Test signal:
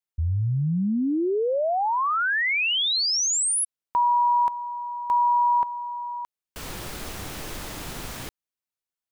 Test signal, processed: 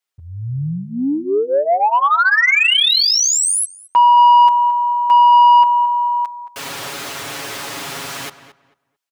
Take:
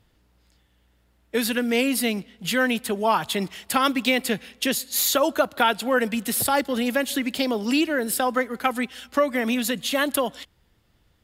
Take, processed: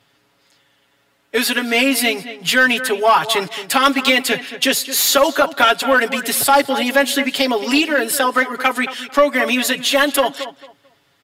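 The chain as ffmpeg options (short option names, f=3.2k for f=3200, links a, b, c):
-filter_complex "[0:a]highpass=90,aecho=1:1:7.2:0.87,asplit=2[a][b];[b]adelay=222,lowpass=f=2.5k:p=1,volume=-13dB,asplit=2[c][d];[d]adelay=222,lowpass=f=2.5k:p=1,volume=0.22,asplit=2[e][f];[f]adelay=222,lowpass=f=2.5k:p=1,volume=0.22[g];[a][c][e][g]amix=inputs=4:normalize=0,asplit=2[h][i];[i]highpass=f=720:p=1,volume=14dB,asoftclip=type=tanh:threshold=-1.5dB[j];[h][j]amix=inputs=2:normalize=0,lowpass=f=6.5k:p=1,volume=-6dB"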